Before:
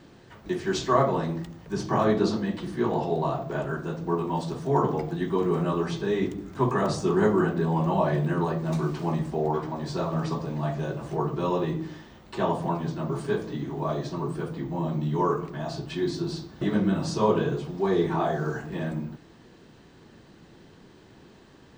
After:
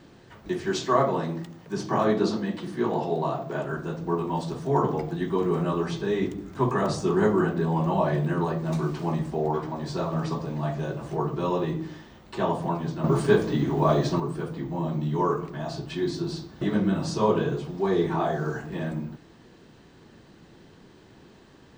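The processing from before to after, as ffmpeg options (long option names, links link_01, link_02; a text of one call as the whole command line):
ffmpeg -i in.wav -filter_complex "[0:a]asettb=1/sr,asplit=3[link_01][link_02][link_03];[link_01]atrim=end=0.704[link_04];[link_02]atrim=start=0.7:end=3.73,asetpts=PTS-STARTPTS,afade=type=in:duration=0.004:curve=qsin,afade=type=out:start_time=3.026:duration=0.004:curve=qsin,highpass=130[link_05];[link_03]atrim=start=3.726[link_06];[link_04][link_05]acrossfade=duration=0.004:curve1=hsin:curve2=qsin[link_07];[link_07][link_06]acrossfade=duration=0.004:curve1=qsin:curve2=hsin,asplit=3[link_08][link_09][link_10];[link_08]atrim=end=13.042[link_11];[link_09]atrim=start=13.038:end=14.202,asetpts=PTS-STARTPTS,volume=7.5dB[link_12];[link_10]atrim=start=14.198[link_13];[link_11][link_12]acrossfade=duration=0.004:curve1=hsin:curve2=hsin[link_14];[link_14][link_13]acrossfade=duration=0.004:curve1=hsin:curve2=hsin" out.wav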